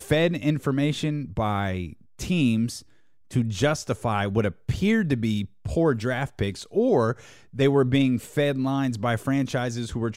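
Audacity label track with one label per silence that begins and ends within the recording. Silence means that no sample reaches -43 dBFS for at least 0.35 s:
2.820000	3.310000	silence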